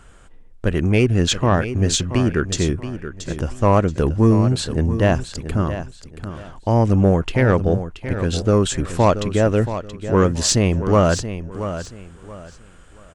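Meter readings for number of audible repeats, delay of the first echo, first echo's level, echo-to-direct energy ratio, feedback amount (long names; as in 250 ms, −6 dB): 3, 678 ms, −11.0 dB, −10.5 dB, 27%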